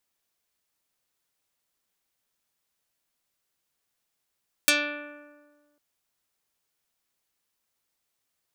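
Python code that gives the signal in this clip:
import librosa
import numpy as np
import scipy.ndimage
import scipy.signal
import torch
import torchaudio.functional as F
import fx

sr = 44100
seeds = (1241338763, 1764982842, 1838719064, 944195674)

y = fx.pluck(sr, length_s=1.1, note=62, decay_s=1.59, pick=0.29, brightness='dark')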